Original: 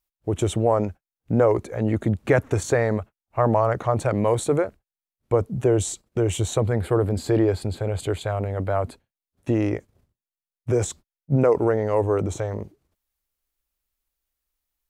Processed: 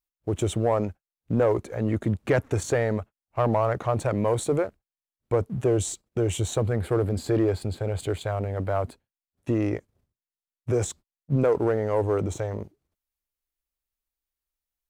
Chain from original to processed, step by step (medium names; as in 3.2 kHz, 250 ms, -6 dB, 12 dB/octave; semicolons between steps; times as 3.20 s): waveshaping leveller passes 1; trim -6 dB